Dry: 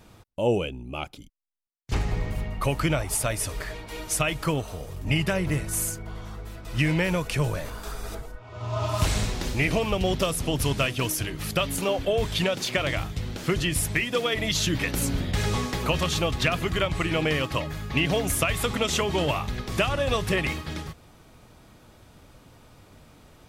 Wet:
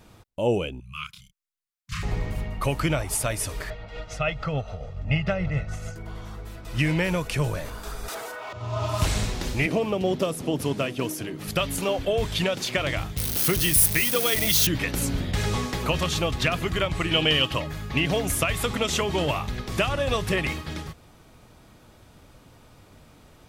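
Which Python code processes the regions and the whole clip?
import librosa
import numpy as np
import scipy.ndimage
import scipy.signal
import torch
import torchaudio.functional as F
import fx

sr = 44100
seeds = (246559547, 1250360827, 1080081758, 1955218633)

y = fx.chain(x, sr, fx.brickwall_bandstop(low_hz=200.0, high_hz=1000.0),
    fx.low_shelf(hz=120.0, db=-9.5),
    fx.doubler(ms=31.0, db=-3.5), at=(0.8, 2.03))
y = fx.chain(y, sr, fx.comb(ms=1.5, depth=0.72),
    fx.tremolo(hz=6.9, depth=0.45),
    fx.air_absorb(metres=190.0), at=(3.7, 5.96))
y = fx.chain(y, sr, fx.highpass(hz=600.0, slope=12),
    fx.leveller(passes=3),
    fx.env_flatten(amount_pct=50), at=(8.08, 8.53))
y = fx.chain(y, sr, fx.highpass(hz=230.0, slope=12),
    fx.tilt_shelf(db=6.5, hz=660.0), at=(9.66, 11.48))
y = fx.chain(y, sr, fx.crossing_spikes(level_db=-18.5),
    fx.high_shelf(hz=8300.0, db=5.5),
    fx.notch(hz=7300.0, q=6.0), at=(13.17, 14.67))
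y = fx.chain(y, sr, fx.peak_eq(hz=3000.0, db=14.0, octaves=0.35),
    fx.notch(hz=2100.0, q=17.0), at=(17.11, 17.54))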